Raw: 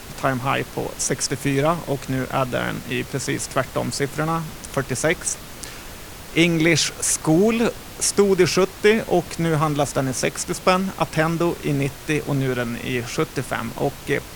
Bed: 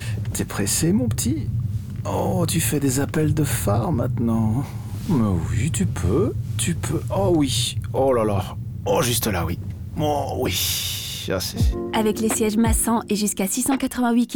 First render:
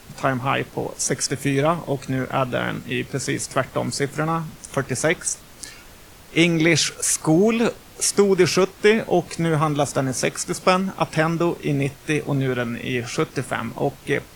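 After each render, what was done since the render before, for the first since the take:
noise reduction from a noise print 8 dB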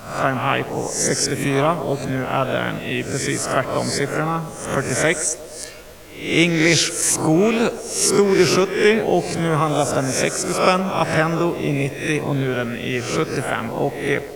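peak hold with a rise ahead of every peak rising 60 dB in 0.58 s
feedback echo with a band-pass in the loop 117 ms, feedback 78%, band-pass 560 Hz, level −13 dB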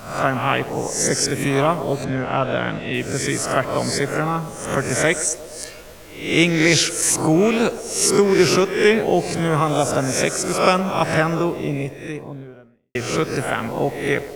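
0:02.04–0:02.94: high-frequency loss of the air 85 metres
0:11.08–0:12.95: fade out and dull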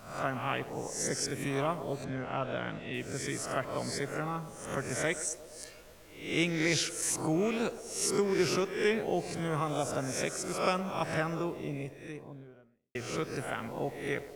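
level −13.5 dB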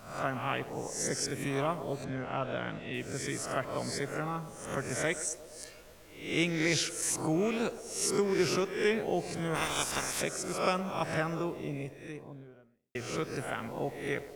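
0:09.54–0:10.20: ceiling on every frequency bin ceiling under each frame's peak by 25 dB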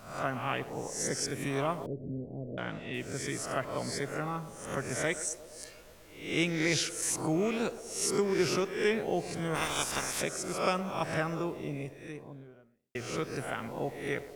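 0:01.86–0:02.58: inverse Chebyshev low-pass filter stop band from 1,200 Hz, stop band 50 dB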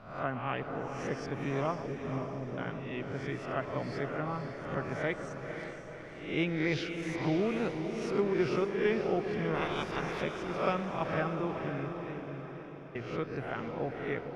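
high-frequency loss of the air 310 metres
feedback delay with all-pass diffusion 519 ms, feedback 52%, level −6.5 dB

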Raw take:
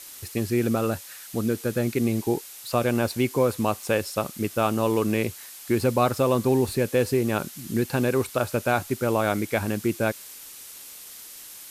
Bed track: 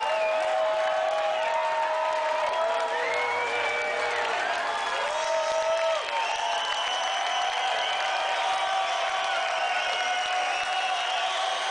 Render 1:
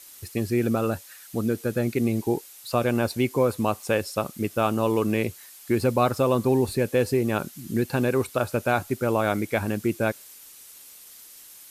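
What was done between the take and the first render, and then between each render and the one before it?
broadband denoise 6 dB, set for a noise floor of −43 dBFS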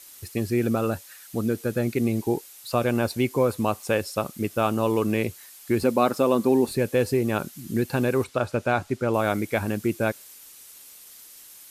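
0:05.83–0:06.71: low shelf with overshoot 140 Hz −12.5 dB, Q 1.5
0:08.24–0:09.14: high-frequency loss of the air 57 metres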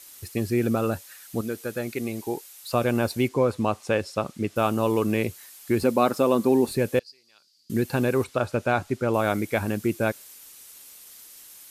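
0:01.41–0:02.68: low-shelf EQ 350 Hz −10.5 dB
0:03.28–0:04.56: high-frequency loss of the air 57 metres
0:06.99–0:07.70: resonant band-pass 4,700 Hz, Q 12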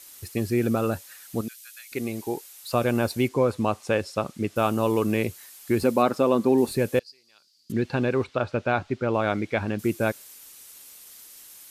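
0:01.48–0:01.92: Bessel high-pass filter 2,900 Hz, order 4
0:06.02–0:06.58: high-shelf EQ 7,800 Hz −11 dB
0:07.72–0:09.79: Chebyshev low-pass filter 3,800 Hz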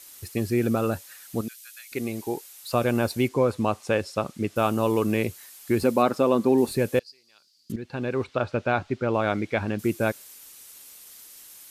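0:07.76–0:08.36: fade in, from −14 dB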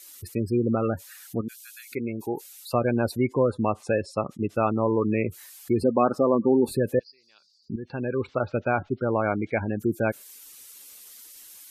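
gate on every frequency bin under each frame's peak −20 dB strong
dynamic equaliser 5,200 Hz, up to −4 dB, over −48 dBFS, Q 1.2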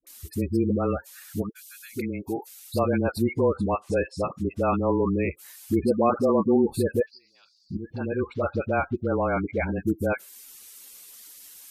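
all-pass dispersion highs, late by 69 ms, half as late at 600 Hz
frequency shifter −20 Hz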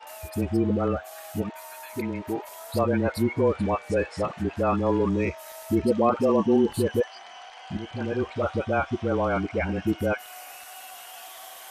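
mix in bed track −17.5 dB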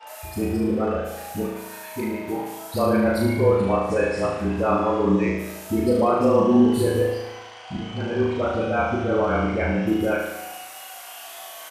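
double-tracking delay 16 ms −12 dB
flutter between parallel walls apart 6.3 metres, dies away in 0.95 s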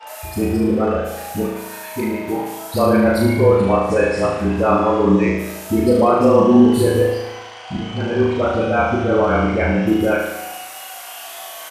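level +5.5 dB
brickwall limiter −2 dBFS, peak gain reduction 1 dB

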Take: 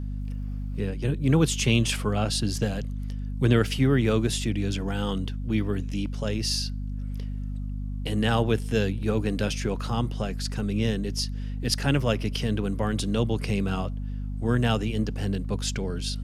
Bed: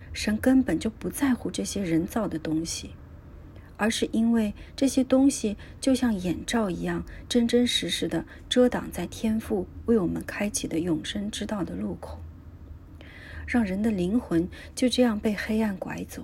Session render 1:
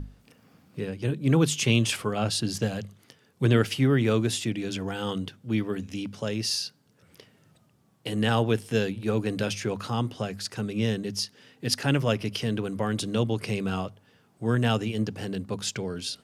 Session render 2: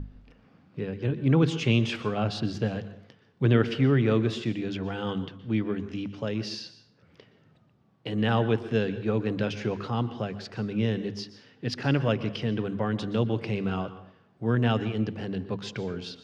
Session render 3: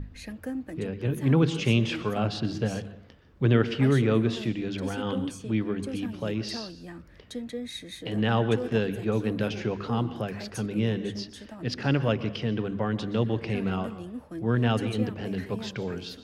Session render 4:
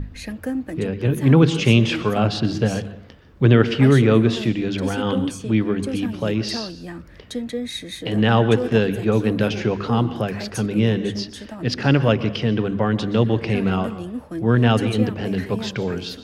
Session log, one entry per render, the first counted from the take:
mains-hum notches 50/100/150/200/250 Hz
high-frequency loss of the air 210 metres; dense smooth reverb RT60 0.64 s, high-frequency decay 0.75×, pre-delay 110 ms, DRR 13 dB
mix in bed −13.5 dB
level +8 dB; brickwall limiter −2 dBFS, peak gain reduction 2 dB

